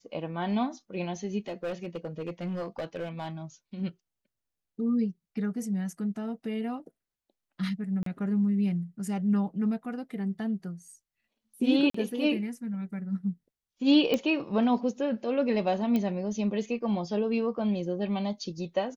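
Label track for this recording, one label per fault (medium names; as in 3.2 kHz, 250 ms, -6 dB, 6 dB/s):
1.480000	3.290000	clipped -29 dBFS
8.030000	8.060000	dropout 33 ms
11.900000	11.940000	dropout 44 ms
14.140000	14.140000	pop -14 dBFS
15.960000	15.960000	pop -17 dBFS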